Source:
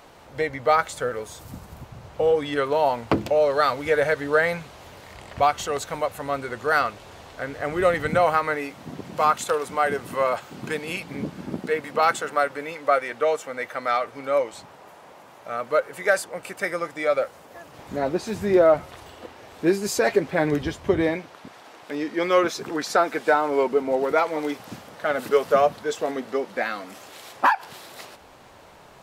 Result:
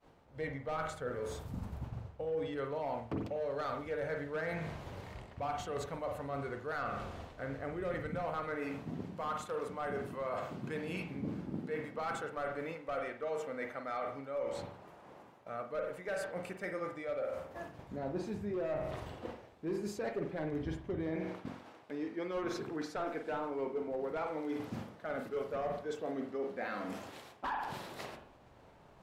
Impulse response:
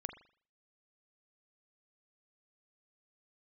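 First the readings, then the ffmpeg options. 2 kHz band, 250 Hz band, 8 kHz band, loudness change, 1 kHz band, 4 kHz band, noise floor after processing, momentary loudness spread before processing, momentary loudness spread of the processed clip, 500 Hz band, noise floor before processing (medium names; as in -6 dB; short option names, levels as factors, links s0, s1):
-17.0 dB, -11.0 dB, -18.5 dB, -15.5 dB, -16.5 dB, -17.0 dB, -59 dBFS, 20 LU, 8 LU, -15.0 dB, -48 dBFS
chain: -filter_complex "[0:a]agate=range=0.0224:threshold=0.01:ratio=3:detection=peak,volume=5.31,asoftclip=hard,volume=0.188,lowshelf=f=380:g=9[s0];[1:a]atrim=start_sample=2205,asetrate=40572,aresample=44100[s1];[s0][s1]afir=irnorm=-1:irlink=0,areverse,acompressor=threshold=0.0141:ratio=4,areverse,highshelf=f=5500:g=-7.5,volume=0.891"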